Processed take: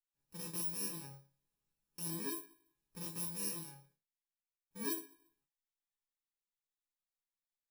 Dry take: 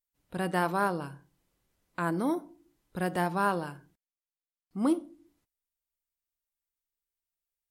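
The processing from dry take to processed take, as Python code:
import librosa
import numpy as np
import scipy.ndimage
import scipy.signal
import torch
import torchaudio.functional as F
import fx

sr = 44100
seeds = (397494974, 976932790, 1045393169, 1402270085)

y = fx.bit_reversed(x, sr, seeds[0], block=64)
y = fx.resonator_bank(y, sr, root=49, chord='minor', decay_s=0.24)
y = y * librosa.db_to_amplitude(1.0)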